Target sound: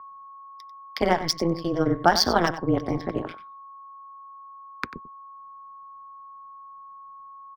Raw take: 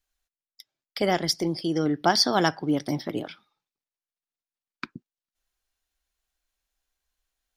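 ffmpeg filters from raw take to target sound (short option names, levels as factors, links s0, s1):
-filter_complex "[0:a]tremolo=f=170:d=0.974,aeval=exprs='val(0)+0.00398*sin(2*PI*1100*n/s)':c=same,acrossover=split=110|1900[s0][s1][s2];[s1]crystalizer=i=6.5:c=0[s3];[s2]adynamicsmooth=sensitivity=5:basefreq=3500[s4];[s0][s3][s4]amix=inputs=3:normalize=0,asplit=2[s5][s6];[s6]adelay=93.29,volume=0.224,highshelf=f=4000:g=-2.1[s7];[s5][s7]amix=inputs=2:normalize=0,volume=1.78"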